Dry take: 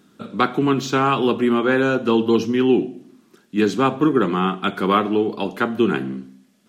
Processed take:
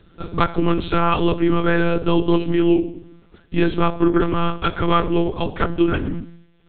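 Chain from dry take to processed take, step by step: in parallel at 0 dB: compression, threshold -25 dBFS, peak gain reduction 13 dB; on the sum: monotone LPC vocoder at 8 kHz 170 Hz; trim -1.5 dB

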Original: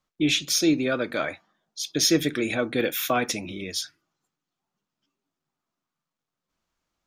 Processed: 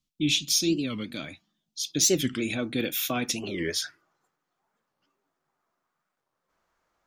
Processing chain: high-order bell 880 Hz -15 dB 2.7 oct, from 1.86 s -8 dB, from 3.43 s +9 dB; warped record 45 rpm, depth 250 cents

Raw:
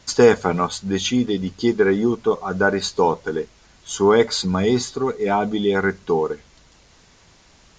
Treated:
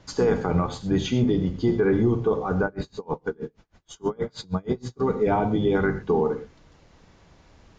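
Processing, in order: octave divider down 1 oct, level -4 dB; low-pass 3.7 kHz 6 dB/octave; tilt shelf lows +4 dB, about 1.3 kHz; hum notches 50/100/150/200/250 Hz; peak limiter -10 dBFS, peak gain reduction 10 dB; gated-style reverb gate 140 ms flat, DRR 7.5 dB; 2.65–5.00 s: logarithmic tremolo 6.3 Hz, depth 32 dB; trim -3.5 dB

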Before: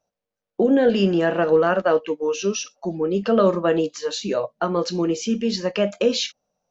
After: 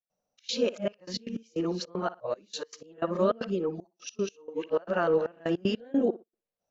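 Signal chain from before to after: reverse the whole clip; tape echo 60 ms, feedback 24%, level -15.5 dB, low-pass 4.7 kHz; trance gate ".xxx.xxxx..x.x." 154 bpm -24 dB; trim -7.5 dB

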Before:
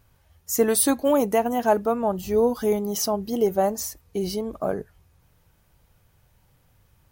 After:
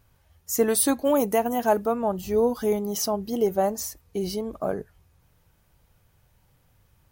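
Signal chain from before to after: 1.16–1.88 s: treble shelf 9 kHz +7 dB; trim -1.5 dB

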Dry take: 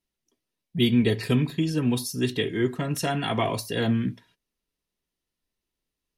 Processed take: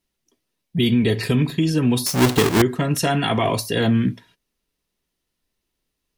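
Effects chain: 2.06–2.62 s: square wave that keeps the level; loudness maximiser +16 dB; trim -9 dB

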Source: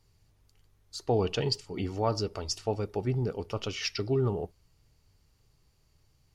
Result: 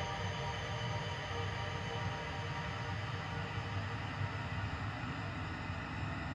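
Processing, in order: spectrum inverted on a logarithmic axis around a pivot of 1.1 kHz; on a send: delay 833 ms -13.5 dB; on the sum: ever faster or slower copies 190 ms, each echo -7 st, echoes 3, each echo -6 dB; distance through air 230 m; Paulstretch 22×, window 1.00 s, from 5.16 s; trim +3 dB

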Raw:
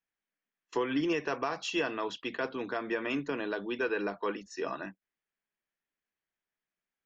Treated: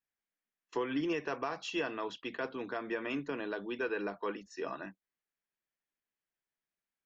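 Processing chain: treble shelf 5.7 kHz -5 dB; trim -3.5 dB

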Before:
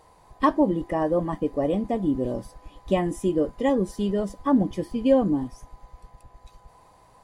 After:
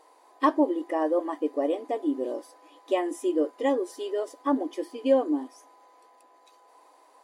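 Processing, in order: brick-wall FIR high-pass 260 Hz; trim -1.5 dB

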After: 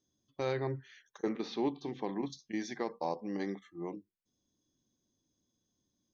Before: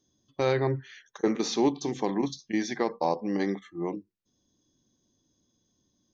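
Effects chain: 1.29–2.30 s: low-pass 4.2 kHz 24 dB/octave; trim -8.5 dB

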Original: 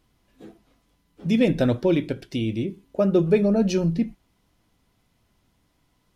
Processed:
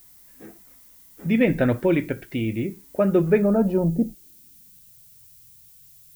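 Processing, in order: low-pass sweep 2 kHz -> 130 Hz, 3.28–4.91 s; added noise violet -51 dBFS

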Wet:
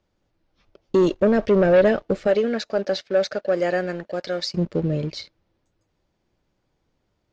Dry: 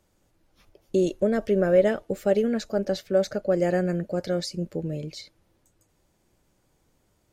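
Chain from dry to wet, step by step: 2.26–4.53 s: high-pass 500 Hz -> 1.1 kHz 6 dB/octave; waveshaping leveller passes 2; low-pass 5.4 kHz 24 dB/octave

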